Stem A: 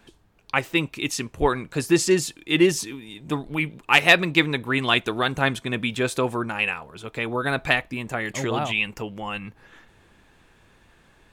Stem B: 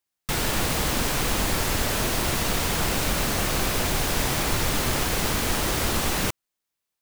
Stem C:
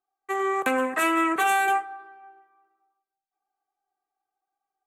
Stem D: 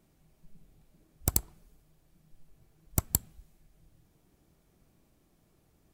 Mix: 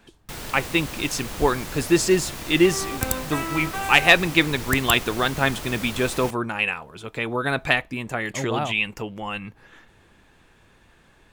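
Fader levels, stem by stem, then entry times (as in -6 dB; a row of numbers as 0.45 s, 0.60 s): +0.5 dB, -10.0 dB, -7.5 dB, +1.0 dB; 0.00 s, 0.00 s, 2.35 s, 1.75 s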